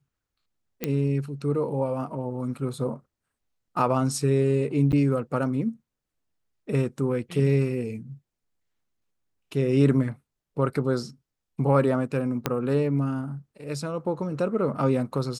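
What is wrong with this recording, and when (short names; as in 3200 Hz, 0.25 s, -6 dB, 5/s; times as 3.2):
0.84 pop -12 dBFS
4.92–4.93 gap 8.7 ms
12.46 pop -9 dBFS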